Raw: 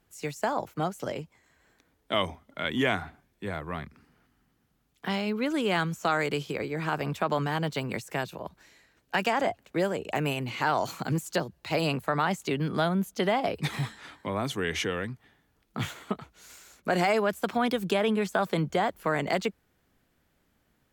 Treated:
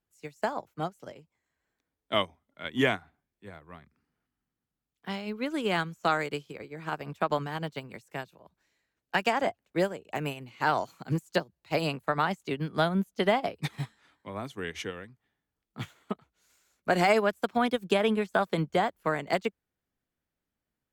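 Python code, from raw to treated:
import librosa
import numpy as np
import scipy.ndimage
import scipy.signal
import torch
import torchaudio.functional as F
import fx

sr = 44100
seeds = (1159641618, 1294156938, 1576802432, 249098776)

y = fx.upward_expand(x, sr, threshold_db=-36.0, expansion=2.5)
y = F.gain(torch.from_numpy(y), 3.5).numpy()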